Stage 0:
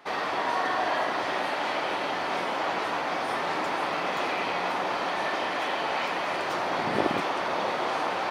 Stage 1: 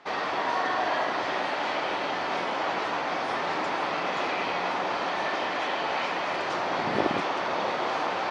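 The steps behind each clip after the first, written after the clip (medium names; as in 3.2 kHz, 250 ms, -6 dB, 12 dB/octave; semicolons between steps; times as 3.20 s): low-pass 7.2 kHz 24 dB/octave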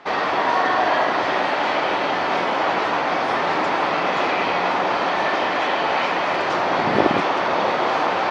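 treble shelf 4.8 kHz -6.5 dB; trim +8.5 dB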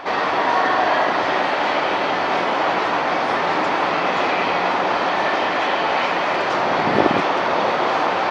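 reverse echo 293 ms -14.5 dB; trim +1 dB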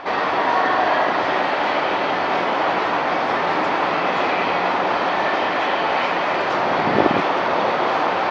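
distance through air 65 m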